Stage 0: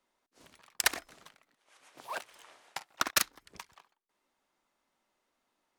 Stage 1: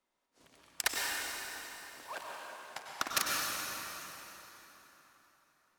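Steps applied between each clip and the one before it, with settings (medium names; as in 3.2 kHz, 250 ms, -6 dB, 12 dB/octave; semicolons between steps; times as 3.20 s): plate-style reverb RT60 3.9 s, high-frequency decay 0.8×, pre-delay 85 ms, DRR -2.5 dB; trim -5 dB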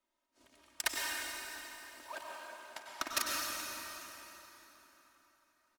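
comb 3.2 ms, depth 66%; trim -4 dB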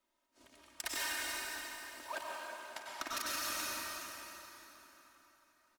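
peak limiter -31.5 dBFS, peak gain reduction 11.5 dB; trim +3 dB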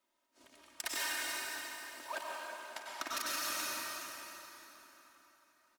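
bass shelf 96 Hz -12 dB; trim +1 dB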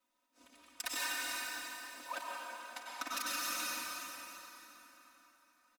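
comb 4 ms, depth 98%; trim -3.5 dB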